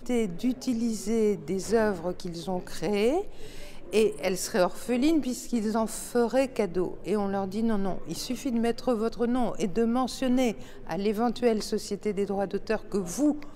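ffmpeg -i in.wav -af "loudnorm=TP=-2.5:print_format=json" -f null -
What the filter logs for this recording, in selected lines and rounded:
"input_i" : "-28.4",
"input_tp" : "-10.0",
"input_lra" : "1.4",
"input_thresh" : "-38.5",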